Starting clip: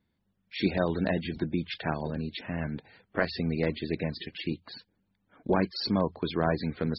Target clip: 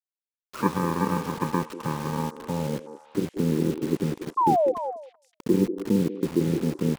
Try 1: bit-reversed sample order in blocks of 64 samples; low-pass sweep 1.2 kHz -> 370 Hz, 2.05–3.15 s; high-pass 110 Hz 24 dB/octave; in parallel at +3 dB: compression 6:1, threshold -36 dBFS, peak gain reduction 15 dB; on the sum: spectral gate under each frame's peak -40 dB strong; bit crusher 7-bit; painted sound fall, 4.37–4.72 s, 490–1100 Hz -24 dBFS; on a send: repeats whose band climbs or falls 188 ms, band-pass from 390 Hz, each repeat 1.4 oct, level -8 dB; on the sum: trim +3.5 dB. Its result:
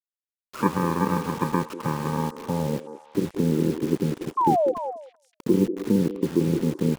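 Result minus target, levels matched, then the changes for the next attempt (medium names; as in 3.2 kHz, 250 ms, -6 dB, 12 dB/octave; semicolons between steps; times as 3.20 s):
compression: peak gain reduction -7.5 dB
change: compression 6:1, threshold -45 dBFS, peak gain reduction 22.5 dB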